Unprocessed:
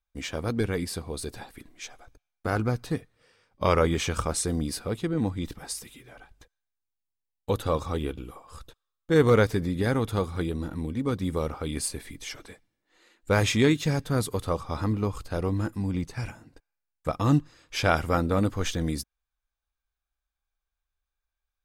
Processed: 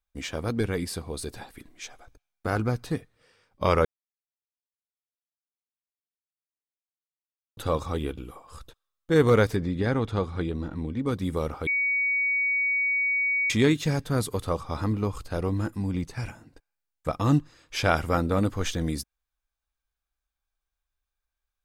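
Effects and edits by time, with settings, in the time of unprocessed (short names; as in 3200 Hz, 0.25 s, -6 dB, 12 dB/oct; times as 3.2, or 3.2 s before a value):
3.85–7.57 mute
9.56–11.06 air absorption 90 m
11.67–13.5 bleep 2250 Hz -22 dBFS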